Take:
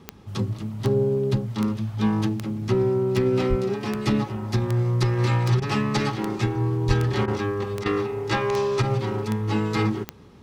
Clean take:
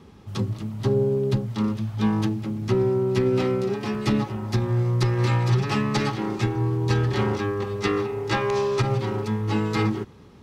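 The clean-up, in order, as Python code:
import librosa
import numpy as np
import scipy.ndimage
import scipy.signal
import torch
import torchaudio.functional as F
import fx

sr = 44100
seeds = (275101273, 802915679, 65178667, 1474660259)

y = fx.fix_declick_ar(x, sr, threshold=10.0)
y = fx.highpass(y, sr, hz=140.0, slope=24, at=(3.49, 3.61), fade=0.02)
y = fx.highpass(y, sr, hz=140.0, slope=24, at=(6.87, 6.99), fade=0.02)
y = fx.fix_interpolate(y, sr, at_s=(5.6, 7.26, 7.84), length_ms=17.0)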